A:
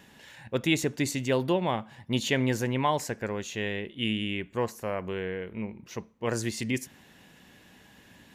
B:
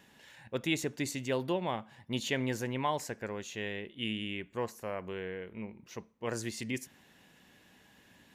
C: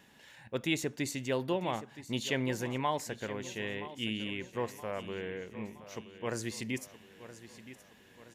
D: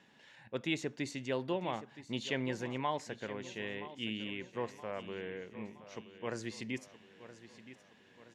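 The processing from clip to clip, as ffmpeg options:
-af "lowshelf=f=200:g=-3.5,volume=0.531"
-af "aecho=1:1:971|1942|2913|3884:0.188|0.0904|0.0434|0.0208"
-af "highpass=110,lowpass=5500,volume=0.708"

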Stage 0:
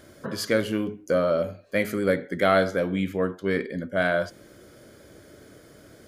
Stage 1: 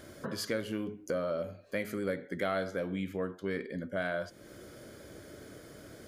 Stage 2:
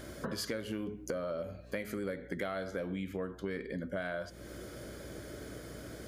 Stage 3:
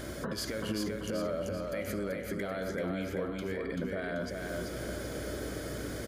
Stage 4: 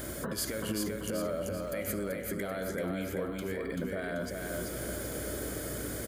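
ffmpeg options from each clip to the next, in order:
-af "acompressor=threshold=0.0112:ratio=2"
-af "aeval=exprs='val(0)+0.00158*(sin(2*PI*60*n/s)+sin(2*PI*2*60*n/s)/2+sin(2*PI*3*60*n/s)/3+sin(2*PI*4*60*n/s)/4+sin(2*PI*5*60*n/s)/5)':c=same,acompressor=threshold=0.0126:ratio=4,volume=1.5"
-filter_complex "[0:a]alimiter=level_in=2.66:limit=0.0631:level=0:latency=1:release=95,volume=0.376,asplit=2[s0][s1];[s1]aecho=0:1:386|772|1158|1544|1930|2316:0.668|0.307|0.141|0.0651|0.0299|0.0138[s2];[s0][s2]amix=inputs=2:normalize=0,volume=2"
-af "aexciter=amount=4.1:drive=1.3:freq=7400"

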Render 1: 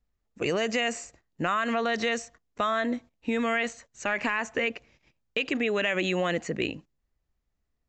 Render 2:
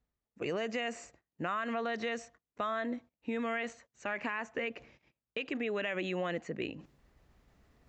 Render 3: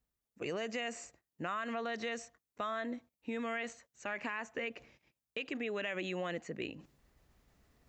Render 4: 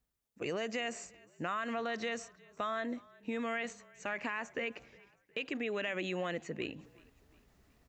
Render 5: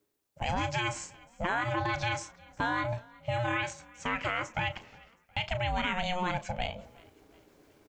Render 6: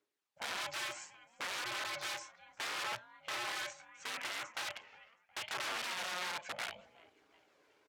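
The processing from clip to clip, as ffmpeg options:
-af "highpass=f=91:p=1,highshelf=f=4500:g=-12,areverse,acompressor=mode=upward:threshold=0.0158:ratio=2.5,areverse,volume=0.447"
-af "highshelf=f=5300:g=9,volume=0.668"
-filter_complex "[0:a]asplit=4[s0][s1][s2][s3];[s1]adelay=361,afreqshift=-32,volume=0.0631[s4];[s2]adelay=722,afreqshift=-64,volume=0.0285[s5];[s3]adelay=1083,afreqshift=-96,volume=0.0127[s6];[s0][s4][s5][s6]amix=inputs=4:normalize=0,volume=1.19"
-filter_complex "[0:a]aeval=exprs='val(0)*sin(2*PI*360*n/s)':c=same,asplit=2[s0][s1];[s1]adelay=34,volume=0.224[s2];[s0][s2]amix=inputs=2:normalize=0,volume=2.66"
-af "aphaser=in_gain=1:out_gain=1:delay=2.3:decay=0.28:speed=0.71:type=triangular,aeval=exprs='(mod(23.7*val(0)+1,2)-1)/23.7':c=same,bandpass=f=2000:t=q:w=0.52:csg=0,volume=0.708"

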